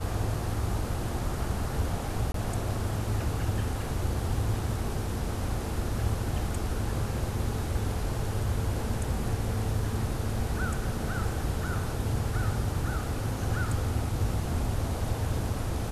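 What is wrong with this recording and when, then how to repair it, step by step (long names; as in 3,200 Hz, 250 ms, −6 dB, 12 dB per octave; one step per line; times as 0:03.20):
0:02.32–0:02.34: drop-out 23 ms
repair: repair the gap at 0:02.32, 23 ms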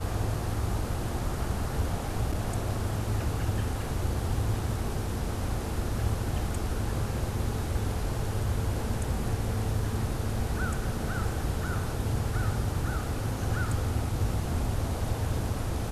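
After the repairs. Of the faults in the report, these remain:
none of them is left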